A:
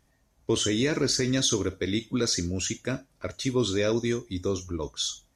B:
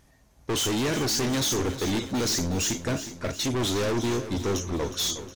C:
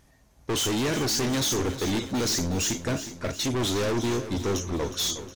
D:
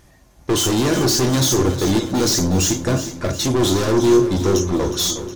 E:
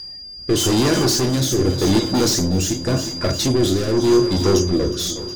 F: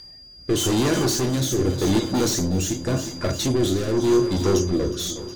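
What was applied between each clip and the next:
gain into a clipping stage and back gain 32 dB; on a send: repeating echo 363 ms, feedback 58%, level −12 dB; on the sum: level +7.5 dB
no processing that can be heard
dynamic equaliser 2,300 Hz, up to −6 dB, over −46 dBFS, Q 1.3; on a send at −7 dB: convolution reverb RT60 0.40 s, pre-delay 3 ms; on the sum: level +8 dB
steady tone 4,800 Hz −29 dBFS; rotating-speaker cabinet horn 0.85 Hz; level +1.5 dB
notch filter 5,000 Hz, Q 6.1; level −3.5 dB

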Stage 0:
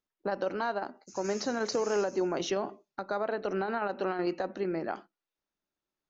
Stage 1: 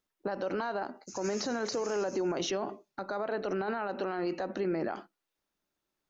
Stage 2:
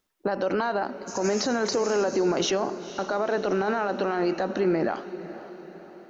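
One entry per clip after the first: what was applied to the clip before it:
brickwall limiter −29 dBFS, peak gain reduction 10 dB; level +5 dB
feedback delay with all-pass diffusion 493 ms, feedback 53%, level −14 dB; level +7.5 dB

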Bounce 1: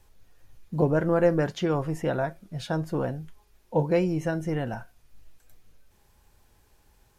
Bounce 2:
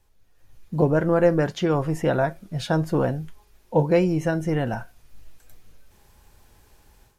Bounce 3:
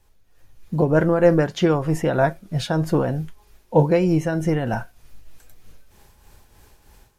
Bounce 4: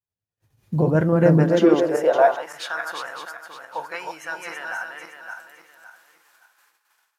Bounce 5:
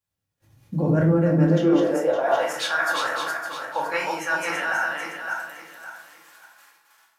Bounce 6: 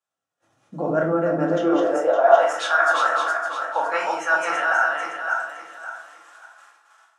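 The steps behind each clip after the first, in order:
automatic gain control gain up to 12 dB; level −5.5 dB
shaped tremolo triangle 3.2 Hz, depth 55%; level +5.5 dB
feedback delay that plays each chunk backwards 281 ms, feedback 55%, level −3.5 dB; downward expander −40 dBFS; high-pass filter sweep 110 Hz → 1,300 Hz, 0:01.13–0:02.64; level −3.5 dB
reversed playback; downward compressor 6 to 1, threshold −27 dBFS, peak gain reduction 16 dB; reversed playback; rectangular room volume 540 cubic metres, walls furnished, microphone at 2.3 metres; level +5 dB
loudspeaker in its box 310–8,800 Hz, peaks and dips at 690 Hz +9 dB, 1,300 Hz +10 dB, 2,200 Hz −4 dB, 4,500 Hz −7 dB

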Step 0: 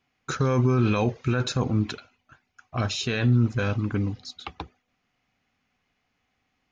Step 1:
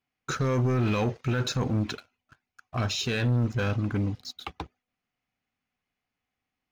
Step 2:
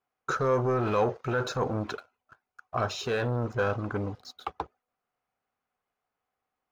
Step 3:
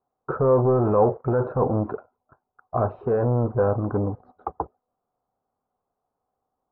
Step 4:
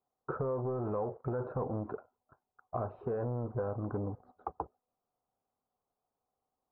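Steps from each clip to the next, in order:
leveller curve on the samples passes 2; level −7.5 dB
flat-topped bell 760 Hz +11.5 dB 2.3 octaves; level −6.5 dB
low-pass filter 1,000 Hz 24 dB per octave; level +7.5 dB
downward compressor 6 to 1, threshold −24 dBFS, peak gain reduction 10.5 dB; level −7.5 dB

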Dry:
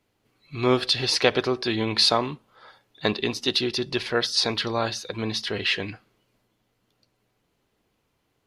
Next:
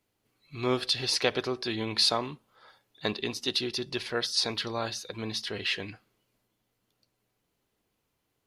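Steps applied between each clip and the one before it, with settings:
high-shelf EQ 6,800 Hz +8.5 dB
level −7 dB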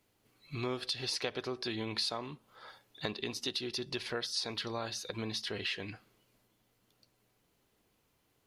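downward compressor 3 to 1, threshold −41 dBFS, peak gain reduction 15.5 dB
level +4 dB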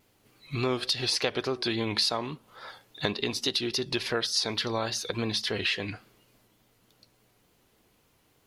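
pitch vibrato 3.5 Hz 64 cents
level +8 dB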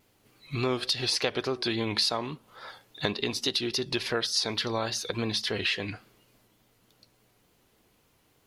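no processing that can be heard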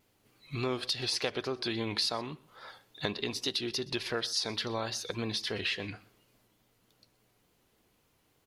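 single-tap delay 124 ms −22 dB
level −4.5 dB

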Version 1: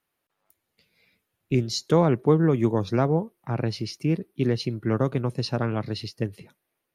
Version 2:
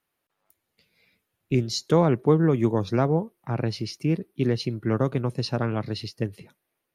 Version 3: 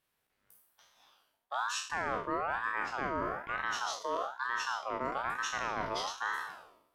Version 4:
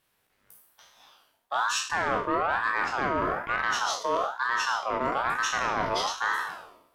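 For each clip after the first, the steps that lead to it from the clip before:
no processing that can be heard
peak hold with a decay on every bin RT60 0.79 s; reversed playback; downward compressor 6 to 1, threshold −29 dBFS, peak gain reduction 15.5 dB; reversed playback; ring modulator whose carrier an LFO sweeps 1,100 Hz, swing 30%, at 1.1 Hz
flanger 0.48 Hz, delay 9 ms, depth 4.4 ms, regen −70%; in parallel at −10.5 dB: sine wavefolder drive 6 dB, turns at −24 dBFS; on the sum: level +7 dB

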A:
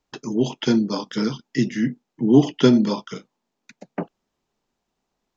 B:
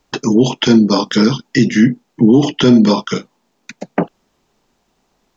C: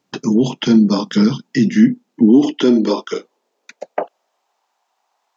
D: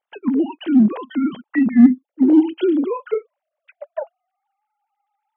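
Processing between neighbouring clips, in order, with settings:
in parallel at 0 dB: downward compressor, threshold −24 dBFS, peak gain reduction 15.5 dB; on the sum: brickwall limiter −10 dBFS, peak gain reduction 10 dB; level +8.5 dB
tape wow and flutter 26 cents; high-pass filter sweep 170 Hz → 820 Hz, 0:01.57–0:04.65; level −6.5 dB
three sine waves on the formant tracks; in parallel at −11 dB: hard clipping −9 dBFS, distortion −9 dB; on the sum: level −4 dB

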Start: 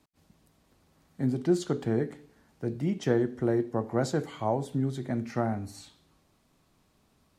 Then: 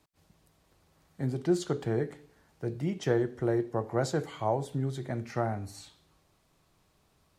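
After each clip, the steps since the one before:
parametric band 240 Hz −8.5 dB 0.52 octaves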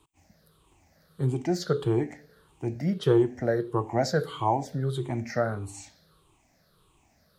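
rippled gain that drifts along the octave scale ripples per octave 0.65, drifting −1.6 Hz, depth 15 dB
level +1.5 dB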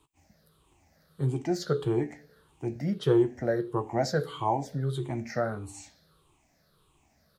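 double-tracking delay 14 ms −11 dB
level −2.5 dB

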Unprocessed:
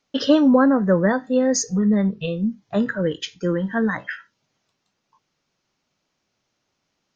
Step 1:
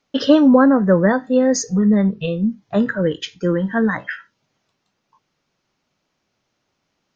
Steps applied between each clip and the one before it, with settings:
high-shelf EQ 4,700 Hz −6 dB
level +3.5 dB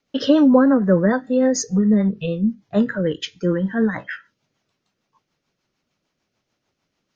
rotating-speaker cabinet horn 6.7 Hz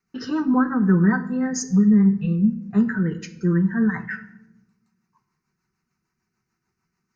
phaser with its sweep stopped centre 1,400 Hz, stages 4
notch comb filter 280 Hz
rectangular room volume 3,500 cubic metres, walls furnished, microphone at 1.1 metres
level +1 dB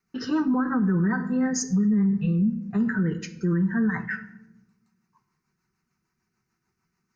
brickwall limiter −16.5 dBFS, peak gain reduction 9 dB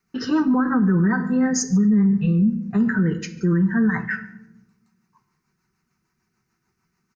single-tap delay 143 ms −24 dB
level +4.5 dB

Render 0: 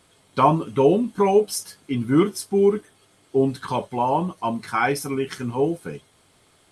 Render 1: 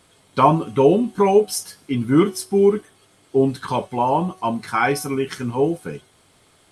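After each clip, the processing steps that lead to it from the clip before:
hum removal 373 Hz, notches 35
level +2.5 dB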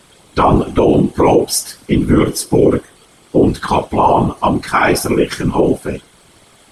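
random phases in short frames
boost into a limiter +10 dB
level −1 dB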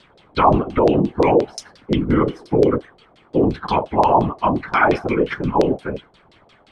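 auto-filter low-pass saw down 5.7 Hz 540–4,600 Hz
level −6 dB

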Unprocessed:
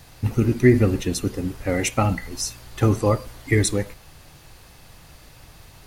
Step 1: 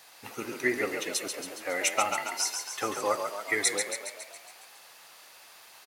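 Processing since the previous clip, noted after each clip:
high-pass filter 700 Hz 12 dB per octave
on a send: echo with shifted repeats 138 ms, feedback 60%, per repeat +44 Hz, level −6 dB
on the sum: level −2 dB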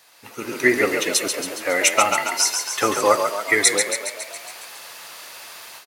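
notch filter 780 Hz, Q 12
automatic gain control gain up to 13.5 dB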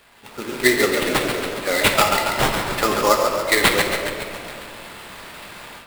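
sample-rate reduction 6,100 Hz, jitter 20%
convolution reverb RT60 2.5 s, pre-delay 5 ms, DRR 5 dB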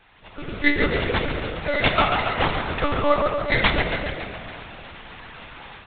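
one-pitch LPC vocoder at 8 kHz 290 Hz
level −2 dB

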